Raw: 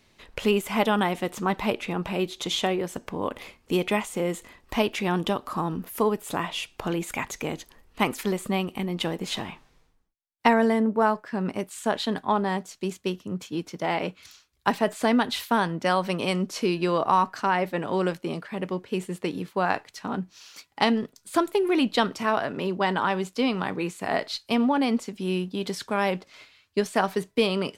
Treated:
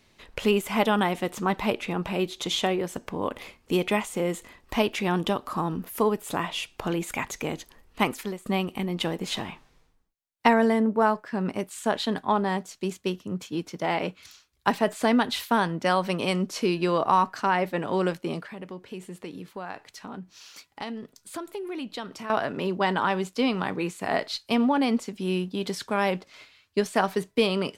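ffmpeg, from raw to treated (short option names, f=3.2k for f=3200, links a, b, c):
-filter_complex "[0:a]asettb=1/sr,asplit=3[a][b][c];[a]atrim=end=18.494[d];[b]atrim=start=18.49:end=22.3,asetpts=PTS-STARTPTS,afade=t=in:d=0.004:c=qsin,afade=t=out:st=3.806:d=0.004:c=qsin,acompressor=threshold=-41dB:ratio=2:attack=3.2:release=140:knee=1:detection=peak[e];[c]atrim=start=22.296[f];[d][e]acrossfade=d=0.004:c1=hsin:c2=qsin[g];[g][f]acrossfade=d=0.004:c1=qsin:c2=hsin,asplit=2[h][i];[h]atrim=end=8.46,asetpts=PTS-STARTPTS,afade=t=out:st=8.03:d=0.43:silence=0.16788[j];[i]atrim=start=8.46,asetpts=PTS-STARTPTS,afade=t=in:d=0.004:c=hsin:silence=0.16788[k];[j][k]concat=n=2:v=0:a=1"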